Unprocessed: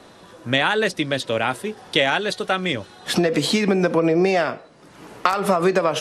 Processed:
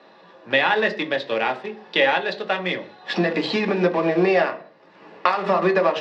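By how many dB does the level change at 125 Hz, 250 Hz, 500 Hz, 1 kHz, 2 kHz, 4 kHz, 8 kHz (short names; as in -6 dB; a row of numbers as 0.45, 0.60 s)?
-4.5 dB, -3.0 dB, -0.5 dB, +0.5 dB, +1.0 dB, -3.5 dB, under -15 dB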